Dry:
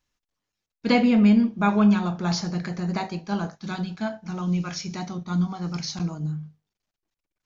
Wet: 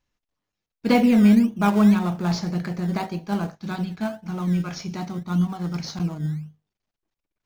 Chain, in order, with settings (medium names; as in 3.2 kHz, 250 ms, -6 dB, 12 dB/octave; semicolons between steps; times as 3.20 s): treble shelf 5.9 kHz -9 dB; in parallel at -11 dB: decimation with a swept rate 20×, swing 60% 1.8 Hz